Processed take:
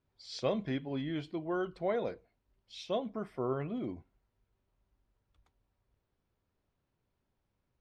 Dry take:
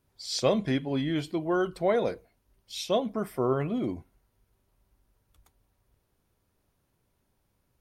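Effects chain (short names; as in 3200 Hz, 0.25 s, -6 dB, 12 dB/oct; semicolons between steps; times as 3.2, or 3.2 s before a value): LPF 4200 Hz 12 dB/oct; gain -7.5 dB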